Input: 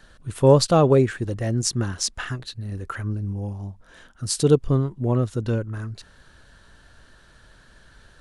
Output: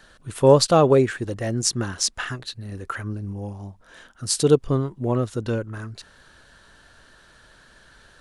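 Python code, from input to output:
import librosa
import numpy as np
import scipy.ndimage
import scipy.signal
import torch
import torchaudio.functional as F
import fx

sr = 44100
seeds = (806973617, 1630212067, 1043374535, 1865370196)

y = fx.low_shelf(x, sr, hz=190.0, db=-8.5)
y = F.gain(torch.from_numpy(y), 2.5).numpy()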